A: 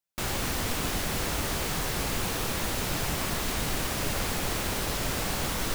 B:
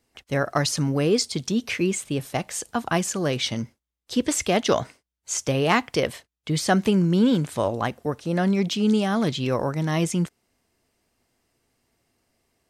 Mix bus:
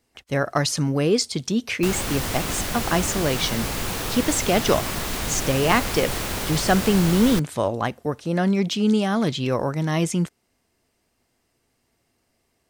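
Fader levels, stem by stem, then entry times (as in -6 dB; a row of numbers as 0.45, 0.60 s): +2.5, +1.0 dB; 1.65, 0.00 s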